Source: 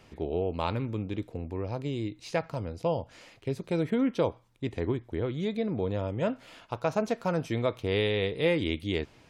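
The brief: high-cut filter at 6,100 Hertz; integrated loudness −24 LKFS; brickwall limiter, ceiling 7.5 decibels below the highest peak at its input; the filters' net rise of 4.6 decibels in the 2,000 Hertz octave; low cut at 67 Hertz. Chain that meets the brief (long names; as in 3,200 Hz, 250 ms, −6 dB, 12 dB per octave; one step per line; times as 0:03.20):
high-pass filter 67 Hz
low-pass filter 6,100 Hz
parametric band 2,000 Hz +5.5 dB
level +9 dB
brickwall limiter −10.5 dBFS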